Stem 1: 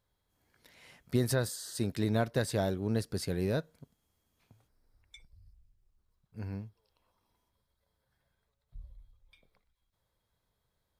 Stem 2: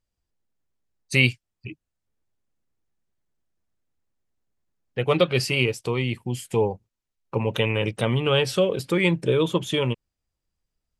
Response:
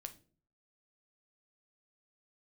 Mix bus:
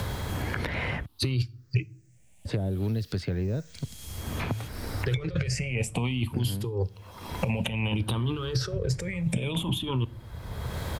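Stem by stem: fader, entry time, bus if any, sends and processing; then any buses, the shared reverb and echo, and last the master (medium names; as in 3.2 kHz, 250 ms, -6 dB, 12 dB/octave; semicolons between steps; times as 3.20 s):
-4.5 dB, 0.00 s, muted 1.06–2.45 s, no send, low-pass that closes with the level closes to 500 Hz, closed at -26 dBFS; three bands compressed up and down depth 100%
0.0 dB, 0.10 s, send -10.5 dB, drifting ripple filter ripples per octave 0.55, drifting +0.57 Hz, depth 16 dB; compressor with a negative ratio -28 dBFS, ratio -1; auto duck -9 dB, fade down 0.80 s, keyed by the first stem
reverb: on, RT60 0.45 s, pre-delay 8 ms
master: peaking EQ 81 Hz +12 dB 1.7 oct; three bands compressed up and down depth 100%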